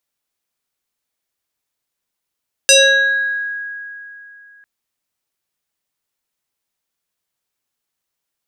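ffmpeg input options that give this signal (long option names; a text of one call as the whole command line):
ffmpeg -f lavfi -i "aevalsrc='0.562*pow(10,-3*t/2.99)*sin(2*PI*1650*t+3.4*pow(10,-3*t/1.03)*sin(2*PI*1.33*1650*t))':duration=1.95:sample_rate=44100" out.wav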